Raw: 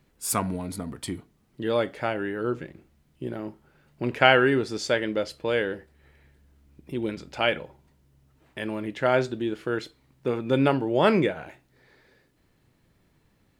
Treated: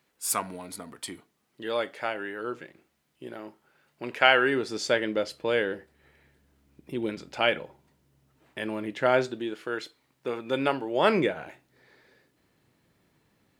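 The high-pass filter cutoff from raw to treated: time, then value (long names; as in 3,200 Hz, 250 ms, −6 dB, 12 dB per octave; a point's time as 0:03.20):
high-pass filter 6 dB per octave
0:04.31 740 Hz
0:04.86 180 Hz
0:09.09 180 Hz
0:09.60 610 Hz
0:10.92 610 Hz
0:11.35 170 Hz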